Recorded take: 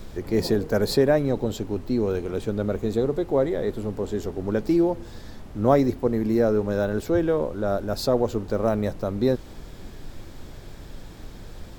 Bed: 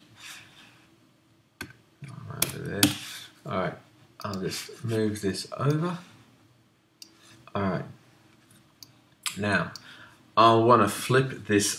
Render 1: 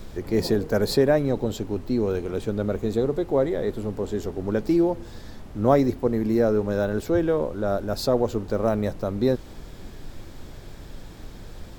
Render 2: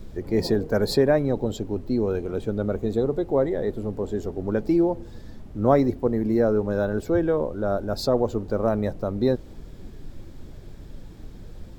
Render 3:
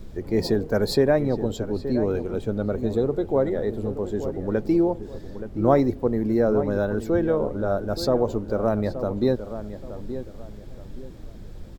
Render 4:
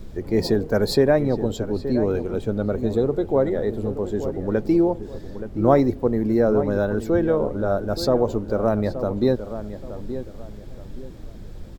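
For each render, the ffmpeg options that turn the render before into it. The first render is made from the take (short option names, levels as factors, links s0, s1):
-af anull
-af "afftdn=nr=8:nf=-41"
-filter_complex "[0:a]asplit=2[s0][s1];[s1]adelay=874,lowpass=f=1700:p=1,volume=0.282,asplit=2[s2][s3];[s3]adelay=874,lowpass=f=1700:p=1,volume=0.32,asplit=2[s4][s5];[s5]adelay=874,lowpass=f=1700:p=1,volume=0.32[s6];[s0][s2][s4][s6]amix=inputs=4:normalize=0"
-af "volume=1.26"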